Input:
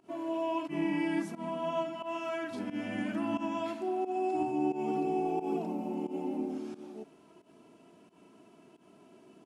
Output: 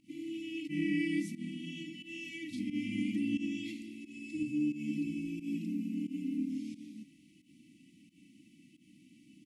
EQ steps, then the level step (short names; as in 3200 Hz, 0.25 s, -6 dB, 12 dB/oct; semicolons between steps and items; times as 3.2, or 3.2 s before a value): brick-wall FIR band-stop 330–1900 Hz; +1.5 dB